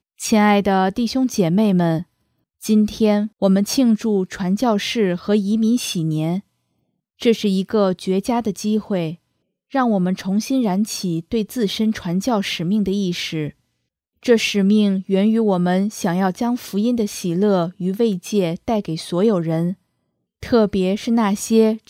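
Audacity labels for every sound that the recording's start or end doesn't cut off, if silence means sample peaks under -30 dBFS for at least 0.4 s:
2.630000	6.400000	sound
7.210000	9.140000	sound
9.740000	13.500000	sound
14.250000	19.730000	sound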